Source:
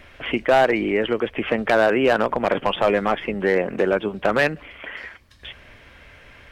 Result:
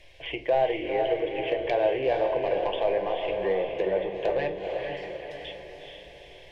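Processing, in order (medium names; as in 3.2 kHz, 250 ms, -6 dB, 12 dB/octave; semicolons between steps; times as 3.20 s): low-pass that closes with the level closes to 1.7 kHz, closed at -16 dBFS; peaking EQ 4.3 kHz +6 dB 2.5 oct; static phaser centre 550 Hz, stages 4; on a send: echo that smears into a reverb 450 ms, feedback 51%, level -4 dB; on the sum: simulated room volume 330 m³, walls furnished, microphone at 0.71 m; trim -7.5 dB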